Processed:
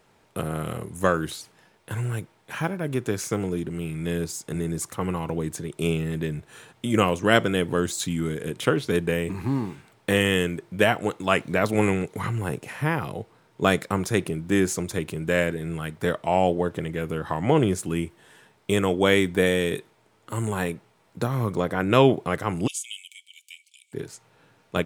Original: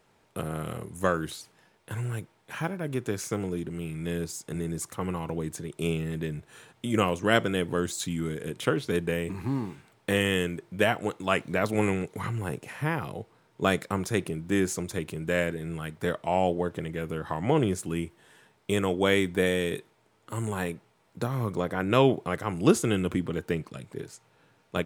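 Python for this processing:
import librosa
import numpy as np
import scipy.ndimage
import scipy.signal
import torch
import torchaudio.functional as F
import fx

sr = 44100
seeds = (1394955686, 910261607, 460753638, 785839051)

y = fx.cheby_ripple_highpass(x, sr, hz=2200.0, ripple_db=9, at=(22.66, 23.92), fade=0.02)
y = F.gain(torch.from_numpy(y), 4.0).numpy()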